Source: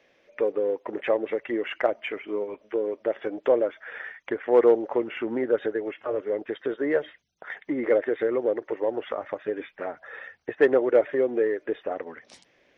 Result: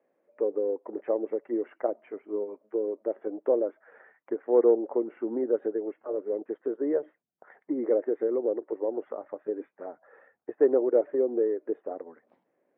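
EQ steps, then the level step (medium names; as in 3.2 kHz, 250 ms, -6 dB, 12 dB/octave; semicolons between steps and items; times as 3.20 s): dynamic bell 340 Hz, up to +7 dB, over -35 dBFS, Q 0.96; Butterworth band-pass 470 Hz, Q 0.5; distance through air 260 m; -7.0 dB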